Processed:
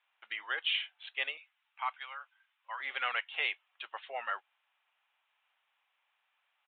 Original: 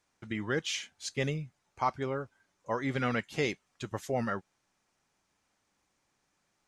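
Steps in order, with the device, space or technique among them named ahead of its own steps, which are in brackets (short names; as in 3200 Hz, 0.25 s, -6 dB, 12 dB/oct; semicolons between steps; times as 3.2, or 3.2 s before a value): 1.37–2.8 HPF 1200 Hz 12 dB/oct; musical greeting card (downsampling 8000 Hz; HPF 760 Hz 24 dB/oct; bell 2800 Hz +7.5 dB 0.53 oct)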